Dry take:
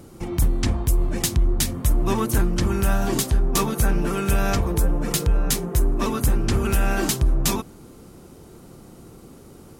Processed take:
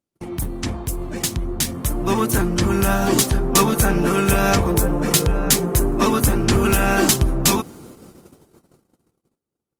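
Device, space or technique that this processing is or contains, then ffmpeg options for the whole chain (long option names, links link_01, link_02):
video call: -af "highpass=frequency=120:poles=1,dynaudnorm=framelen=400:gausssize=11:maxgain=11.5dB,agate=range=-40dB:threshold=-40dB:ratio=16:detection=peak" -ar 48000 -c:a libopus -b:a 32k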